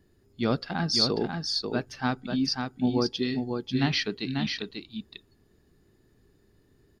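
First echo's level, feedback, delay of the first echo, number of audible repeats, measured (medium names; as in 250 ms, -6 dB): -5.0 dB, no regular repeats, 541 ms, 1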